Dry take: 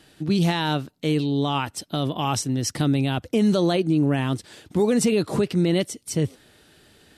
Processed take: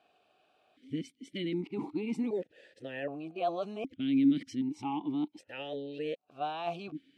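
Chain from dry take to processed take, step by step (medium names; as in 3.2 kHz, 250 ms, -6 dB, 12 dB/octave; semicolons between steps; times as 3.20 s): reverse the whole clip; stepped vowel filter 1.3 Hz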